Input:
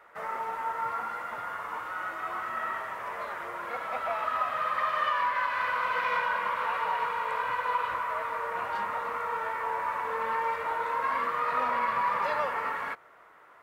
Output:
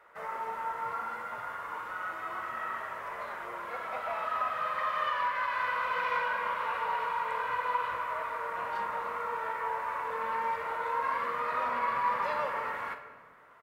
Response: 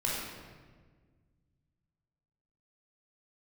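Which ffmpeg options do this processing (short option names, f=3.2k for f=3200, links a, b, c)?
-filter_complex "[0:a]asplit=2[a][b];[b]adelay=45,volume=-12dB[c];[a][c]amix=inputs=2:normalize=0,asplit=2[d][e];[1:a]atrim=start_sample=2205[f];[e][f]afir=irnorm=-1:irlink=0,volume=-12dB[g];[d][g]amix=inputs=2:normalize=0,volume=-5.5dB"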